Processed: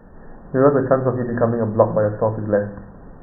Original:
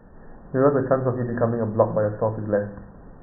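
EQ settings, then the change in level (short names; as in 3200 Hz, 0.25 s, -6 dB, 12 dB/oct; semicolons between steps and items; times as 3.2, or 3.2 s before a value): notches 60/120 Hz; +4.0 dB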